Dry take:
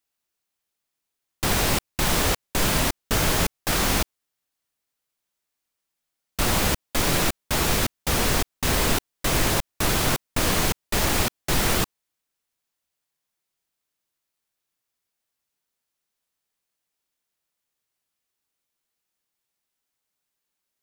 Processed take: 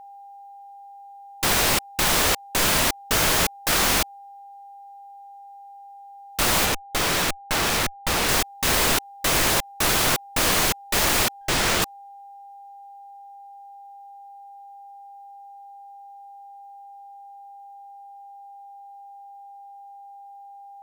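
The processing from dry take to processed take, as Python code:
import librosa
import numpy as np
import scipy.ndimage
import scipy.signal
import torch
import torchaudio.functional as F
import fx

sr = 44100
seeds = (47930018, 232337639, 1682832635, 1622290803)

y = fx.low_shelf(x, sr, hz=370.0, db=-9.5)
y = fx.schmitt(y, sr, flips_db=-28.0, at=(6.65, 8.29))
y = y + 10.0 ** (-45.0 / 20.0) * np.sin(2.0 * np.pi * 800.0 * np.arange(len(y)) / sr)
y = fx.running_max(y, sr, window=3, at=(11.41, 11.82))
y = F.gain(torch.from_numpy(y), 4.0).numpy()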